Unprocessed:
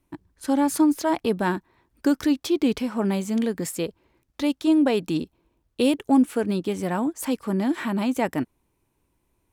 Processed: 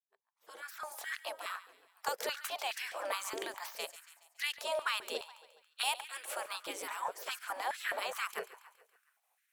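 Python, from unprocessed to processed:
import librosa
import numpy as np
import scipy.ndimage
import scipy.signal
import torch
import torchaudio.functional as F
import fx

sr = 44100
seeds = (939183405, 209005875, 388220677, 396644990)

y = fx.fade_in_head(x, sr, length_s=1.99)
y = fx.high_shelf(y, sr, hz=10000.0, db=6.0)
y = fx.echo_feedback(y, sr, ms=140, feedback_pct=53, wet_db=-16.5)
y = fx.spec_gate(y, sr, threshold_db=-20, keep='weak')
y = fx.filter_held_highpass(y, sr, hz=4.8, low_hz=390.0, high_hz=1800.0)
y = y * 10.0 ** (-3.0 / 20.0)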